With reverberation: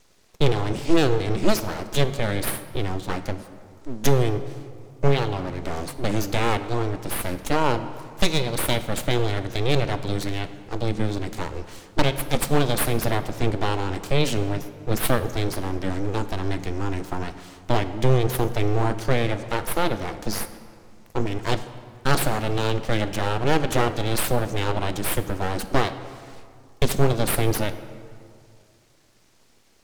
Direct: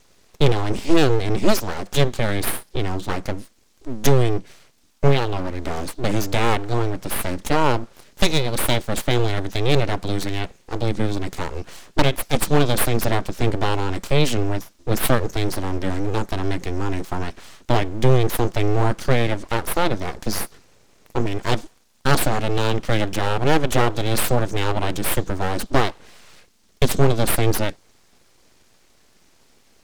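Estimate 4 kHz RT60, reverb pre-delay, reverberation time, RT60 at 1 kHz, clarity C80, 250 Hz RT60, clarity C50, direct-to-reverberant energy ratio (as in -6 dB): 1.3 s, 5 ms, 2.3 s, 2.2 s, 13.0 dB, 2.5 s, 12.5 dB, 11.0 dB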